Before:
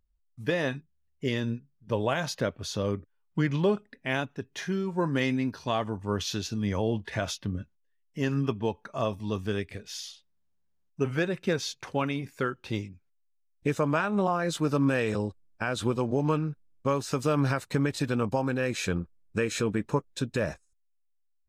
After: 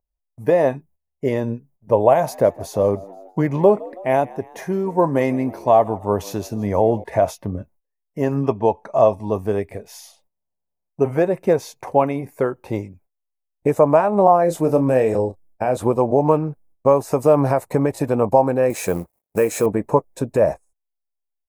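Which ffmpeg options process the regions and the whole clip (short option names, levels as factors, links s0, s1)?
-filter_complex "[0:a]asettb=1/sr,asplit=3[s0][s1][s2];[s0]atrim=end=2.124[s3];[s1]atrim=start=2.12:end=7.04,asetpts=PTS-STARTPTS,afade=t=in:d=0.004:c=qsin,afade=t=out:st=4.916:d=0.004:c=qsin,highshelf=f=9500:g=4.5,asplit=5[s4][s5][s6][s7][s8];[s5]adelay=162,afreqshift=84,volume=0.075[s9];[s6]adelay=324,afreqshift=168,volume=0.0412[s10];[s7]adelay=486,afreqshift=252,volume=0.0226[s11];[s8]adelay=648,afreqshift=336,volume=0.0124[s12];[s4][s9][s10][s11][s12]amix=inputs=5:normalize=0,atrim=end_sample=216972[s13];[s2]atrim=start=7.036[s14];[s3][s13]acrossfade=d=0.004:c1=hsin:c2=qsin[s15];[s15][s14]acrossfade=d=0.004:c1=qsin:c2=hsin,asettb=1/sr,asplit=3[s16][s17][s18];[s16]atrim=end=8.424[s19];[s17]atrim=start=8.42:end=9.22,asetpts=PTS-STARTPTS,afade=t=in:d=0.004:c=qsin,afade=t=out:st=0.796:d=0.004:c=qsin,lowpass=5500,highshelf=f=3700:g=11[s20];[s18]atrim=start=9.216[s21];[s19][s20]acrossfade=d=0.004:c1=hsin:c2=qsin[s22];[s22][s21]acrossfade=d=0.004:c1=qsin:c2=hsin,asettb=1/sr,asplit=3[s23][s24][s25];[s23]atrim=end=14.454[s26];[s24]atrim=start=14.45:end=15.77,asetpts=PTS-STARTPTS,afade=t=in:d=0.004:c=qsin,afade=t=out:st=1.316:d=0.004:c=qsin,equalizer=f=1100:w=1.8:g=-6.5,asplit=2[s27][s28];[s28]adelay=31,volume=0.316[s29];[s27][s29]amix=inputs=2:normalize=0,atrim=end_sample=58212[s30];[s25]atrim=start=15.766[s31];[s26][s30]acrossfade=d=0.004:c1=hsin:c2=qsin[s32];[s32][s31]acrossfade=d=0.004:c1=qsin:c2=hsin,asettb=1/sr,asplit=3[s33][s34][s35];[s33]atrim=end=18.704[s36];[s34]atrim=start=18.7:end=19.66,asetpts=PTS-STARTPTS,afade=t=in:d=0.004:c=qsin,afade=t=out:st=0.956:d=0.004:c=qsin,highshelf=f=3300:g=7,acrusher=bits=5:mode=log:mix=0:aa=0.000001,highpass=f=120:p=1[s37];[s35]atrim=start=19.656[s38];[s36][s37]acrossfade=d=0.004:c1=hsin:c2=qsin[s39];[s39][s38]acrossfade=d=0.004:c1=qsin:c2=hsin,highshelf=f=4200:g=8,agate=range=0.224:threshold=0.00158:ratio=16:detection=peak,firequalizer=gain_entry='entry(210,0);entry(660,13);entry(950,8);entry(1400,-8);entry(2100,-4);entry(3200,-18);entry(11000,-2)':delay=0.05:min_phase=1,volume=1.78"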